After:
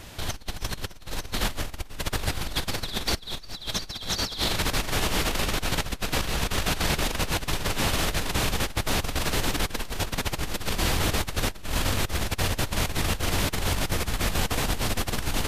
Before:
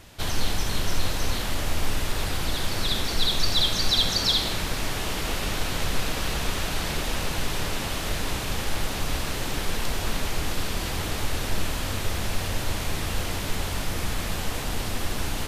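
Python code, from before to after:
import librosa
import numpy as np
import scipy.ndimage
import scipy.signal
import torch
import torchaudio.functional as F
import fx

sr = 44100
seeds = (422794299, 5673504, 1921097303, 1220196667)

y = fx.over_compress(x, sr, threshold_db=-28.0, ratio=-0.5)
y = F.gain(torch.from_numpy(y), 1.5).numpy()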